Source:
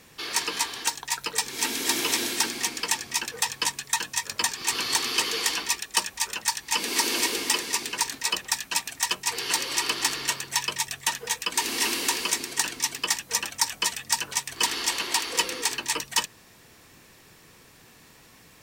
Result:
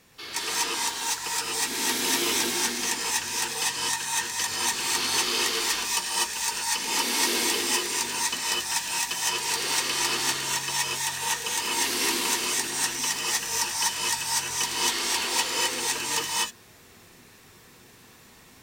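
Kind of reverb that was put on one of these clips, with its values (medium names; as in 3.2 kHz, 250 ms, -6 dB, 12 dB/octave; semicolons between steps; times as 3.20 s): gated-style reverb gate 270 ms rising, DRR -6 dB; trim -6 dB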